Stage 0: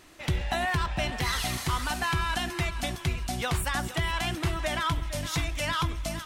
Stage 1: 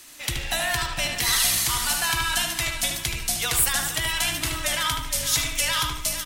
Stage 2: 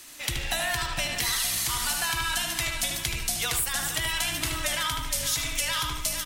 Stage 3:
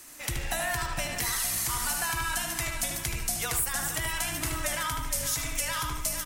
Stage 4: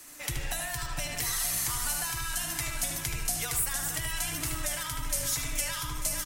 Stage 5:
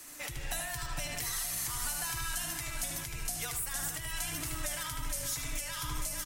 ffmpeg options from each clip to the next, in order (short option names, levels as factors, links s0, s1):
-filter_complex "[0:a]asplit=2[s0][s1];[s1]adelay=75,lowpass=f=3600:p=1,volume=0.668,asplit=2[s2][s3];[s3]adelay=75,lowpass=f=3600:p=1,volume=0.43,asplit=2[s4][s5];[s5]adelay=75,lowpass=f=3600:p=1,volume=0.43,asplit=2[s6][s7];[s7]adelay=75,lowpass=f=3600:p=1,volume=0.43,asplit=2[s8][s9];[s9]adelay=75,lowpass=f=3600:p=1,volume=0.43[s10];[s0][s2][s4][s6][s8][s10]amix=inputs=6:normalize=0,afreqshift=-25,crystalizer=i=8.5:c=0,volume=0.562"
-af "acompressor=threshold=0.0631:ratio=6"
-af "equalizer=f=3500:t=o:w=1.1:g=-9"
-filter_complex "[0:a]aecho=1:1:6.8:0.32,acrossover=split=140|3000[s0][s1][s2];[s1]acompressor=threshold=0.0158:ratio=6[s3];[s0][s3][s2]amix=inputs=3:normalize=0,aecho=1:1:893:0.2,volume=0.891"
-af "alimiter=limit=0.0631:level=0:latency=1:release=393"